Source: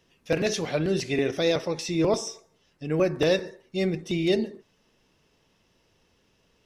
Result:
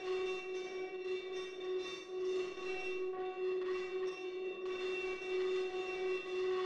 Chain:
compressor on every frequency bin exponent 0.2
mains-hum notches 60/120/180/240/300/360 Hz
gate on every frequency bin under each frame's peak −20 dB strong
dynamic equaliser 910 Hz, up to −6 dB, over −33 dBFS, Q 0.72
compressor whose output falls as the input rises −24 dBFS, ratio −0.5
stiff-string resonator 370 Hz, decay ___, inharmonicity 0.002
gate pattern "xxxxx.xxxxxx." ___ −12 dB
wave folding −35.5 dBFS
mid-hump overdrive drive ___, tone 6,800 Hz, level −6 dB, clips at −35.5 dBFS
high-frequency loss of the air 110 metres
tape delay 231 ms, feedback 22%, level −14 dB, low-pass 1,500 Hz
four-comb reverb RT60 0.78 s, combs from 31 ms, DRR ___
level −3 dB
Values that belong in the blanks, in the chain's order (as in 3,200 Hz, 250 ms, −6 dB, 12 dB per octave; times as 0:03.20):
0.57 s, 187 BPM, 18 dB, −1 dB